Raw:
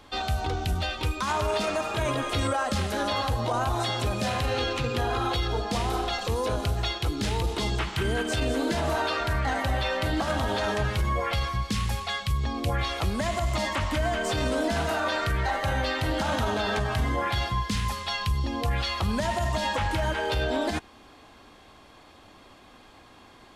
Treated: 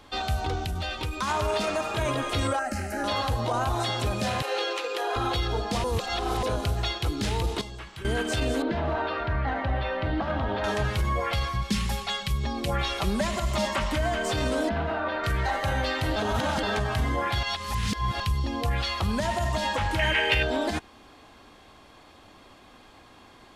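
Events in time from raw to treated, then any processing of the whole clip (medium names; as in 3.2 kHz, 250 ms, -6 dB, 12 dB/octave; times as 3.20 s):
0.60–1.13 s: compression, threshold -26 dBFS
2.59–3.04 s: static phaser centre 710 Hz, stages 8
4.42–5.16 s: steep high-pass 350 Hz 48 dB/octave
5.84–6.43 s: reverse
7.61–8.05 s: feedback comb 560 Hz, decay 0.2 s, mix 80%
8.62–10.64 s: distance through air 340 m
11.61–13.93 s: comb 5.1 ms
14.69–15.24 s: distance through air 380 m
16.16–16.63 s: reverse
17.43–18.20 s: reverse
19.99–20.43 s: high-order bell 2.3 kHz +14.5 dB 1 oct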